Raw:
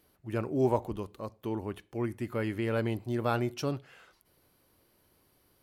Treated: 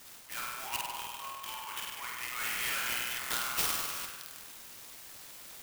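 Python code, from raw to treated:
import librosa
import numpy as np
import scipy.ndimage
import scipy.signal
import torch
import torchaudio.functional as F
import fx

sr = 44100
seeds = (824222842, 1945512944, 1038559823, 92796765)

y = scipy.signal.sosfilt(scipy.signal.cheby1(3, 1.0, 940.0, 'highpass', fs=sr, output='sos'), x)
y = fx.doubler(y, sr, ms=24.0, db=-7.0)
y = fx.room_flutter(y, sr, wall_m=8.5, rt60_s=1.4)
y = fx.fold_sine(y, sr, drive_db=11, ceiling_db=-18.5)
y = fx.high_shelf_res(y, sr, hz=4200.0, db=-10.0, q=3.0, at=(0.67, 3.19))
y = 10.0 ** (-21.0 / 20.0) * np.tanh(y / 10.0 ** (-21.0 / 20.0))
y = np.diff(y, prepend=0.0)
y = fx.buffer_glitch(y, sr, at_s=(3.19, 3.94), block=1024, repeats=4)
y = fx.clock_jitter(y, sr, seeds[0], jitter_ms=0.05)
y = y * librosa.db_to_amplitude(2.5)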